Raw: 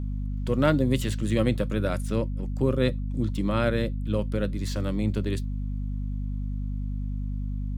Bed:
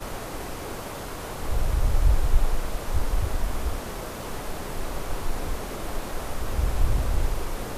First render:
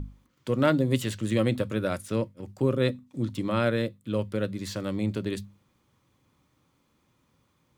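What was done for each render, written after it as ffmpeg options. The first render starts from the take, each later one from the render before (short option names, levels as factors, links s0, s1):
-af "bandreject=f=50:t=h:w=6,bandreject=f=100:t=h:w=6,bandreject=f=150:t=h:w=6,bandreject=f=200:t=h:w=6,bandreject=f=250:t=h:w=6"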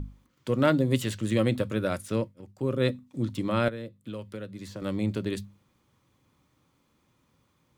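-filter_complex "[0:a]asettb=1/sr,asplit=3[s0][s1][s2];[s0]atrim=end=3.684[s3];[s1]atrim=start=3.68:end=4.82,asetpts=PTS-STARTPTS,afade=t=in:d=0.004:c=qsin,afade=t=out:st=1.136:d=0.004:c=qsin,acrossover=split=92|1000[s4][s5][s6];[s4]acompressor=threshold=0.002:ratio=4[s7];[s5]acompressor=threshold=0.0141:ratio=4[s8];[s6]acompressor=threshold=0.00355:ratio=4[s9];[s7][s8][s9]amix=inputs=3:normalize=0[s10];[s2]atrim=start=4.816[s11];[s3][s10]acrossfade=d=0.004:c1=hsin:c2=qsin[s12];[s12][s11]acrossfade=d=0.004:c1=qsin:c2=hsin,asplit=3[s13][s14][s15];[s13]atrim=end=2.48,asetpts=PTS-STARTPTS,afade=t=out:st=2.16:d=0.32:silence=0.375837[s16];[s14]atrim=start=2.48:end=2.54,asetpts=PTS-STARTPTS,volume=0.376[s17];[s15]atrim=start=2.54,asetpts=PTS-STARTPTS,afade=t=in:d=0.32:silence=0.375837[s18];[s16][s17][s18]concat=n=3:v=0:a=1"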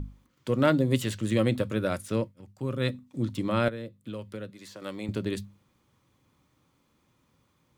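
-filter_complex "[0:a]asettb=1/sr,asplit=3[s0][s1][s2];[s0]atrim=end=2.314[s3];[s1]atrim=start=2.31:end=2.94,asetpts=PTS-STARTPTS,afade=t=in:d=0.004:c=qsin,afade=t=out:st=0.626:d=0.004:c=qsin,equalizer=f=410:w=0.97:g=-6[s4];[s2]atrim=start=2.936[s5];[s3][s4]acrossfade=d=0.004:c1=hsin:c2=qsin[s6];[s6][s5]acrossfade=d=0.004:c1=qsin:c2=hsin,asettb=1/sr,asplit=3[s7][s8][s9];[s7]atrim=end=4.504[s10];[s8]atrim=start=4.5:end=5.09,asetpts=PTS-STARTPTS,afade=t=in:d=0.004:c=qsin,afade=t=out:st=0.586:d=0.004:c=qsin,highpass=f=610:p=1[s11];[s9]atrim=start=5.086[s12];[s10][s11]acrossfade=d=0.004:c1=hsin:c2=qsin[s13];[s13][s12]acrossfade=d=0.004:c1=qsin:c2=hsin"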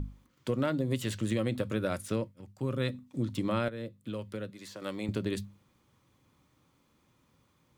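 -af "acompressor=threshold=0.0501:ratio=6"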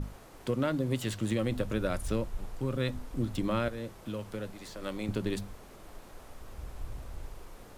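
-filter_complex "[1:a]volume=0.126[s0];[0:a][s0]amix=inputs=2:normalize=0"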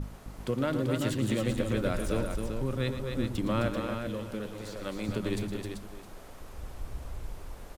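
-af "aecho=1:1:114|262|387|664:0.282|0.501|0.473|0.126"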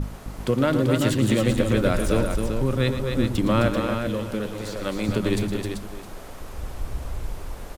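-af "volume=2.66"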